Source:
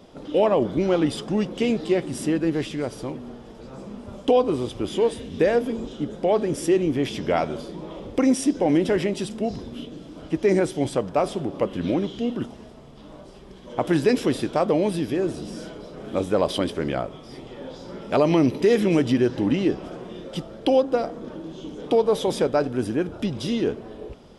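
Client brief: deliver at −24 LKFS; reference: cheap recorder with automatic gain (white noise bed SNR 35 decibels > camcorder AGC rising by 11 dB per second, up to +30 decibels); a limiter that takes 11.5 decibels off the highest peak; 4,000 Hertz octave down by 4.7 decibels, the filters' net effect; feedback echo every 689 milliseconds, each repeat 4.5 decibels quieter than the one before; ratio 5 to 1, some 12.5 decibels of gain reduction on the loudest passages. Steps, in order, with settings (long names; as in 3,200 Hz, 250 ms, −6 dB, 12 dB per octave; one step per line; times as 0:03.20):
parametric band 4,000 Hz −6.5 dB
downward compressor 5 to 1, threshold −29 dBFS
brickwall limiter −26 dBFS
repeating echo 689 ms, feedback 60%, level −4.5 dB
white noise bed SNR 35 dB
camcorder AGC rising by 11 dB per second, up to +30 dB
level +10 dB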